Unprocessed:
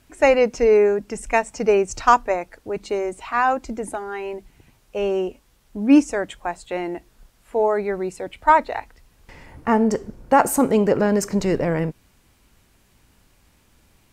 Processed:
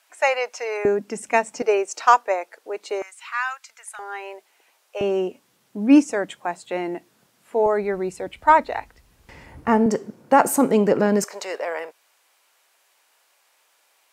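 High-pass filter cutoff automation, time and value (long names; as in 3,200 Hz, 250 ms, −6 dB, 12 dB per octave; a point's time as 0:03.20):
high-pass filter 24 dB per octave
650 Hz
from 0:00.85 170 Hz
from 0:01.62 410 Hz
from 0:03.02 1,300 Hz
from 0:03.99 510 Hz
from 0:05.01 140 Hz
from 0:07.66 41 Hz
from 0:09.86 150 Hz
from 0:11.24 560 Hz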